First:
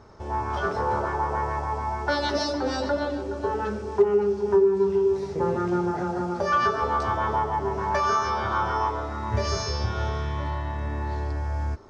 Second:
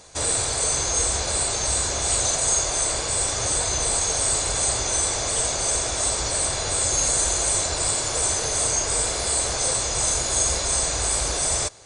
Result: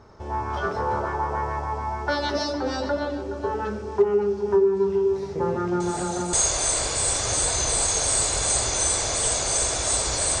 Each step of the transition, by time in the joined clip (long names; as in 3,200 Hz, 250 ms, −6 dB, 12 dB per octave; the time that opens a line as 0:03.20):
first
0:05.80: mix in second from 0:01.93 0.53 s −14 dB
0:06.33: continue with second from 0:02.46